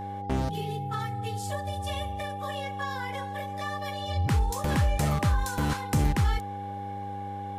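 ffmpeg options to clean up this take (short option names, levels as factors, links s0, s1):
-af "bandreject=f=98.8:t=h:w=4,bandreject=f=197.6:t=h:w=4,bandreject=f=296.4:t=h:w=4,bandreject=f=395.2:t=h:w=4,bandreject=f=494:t=h:w=4,bandreject=f=810:w=30"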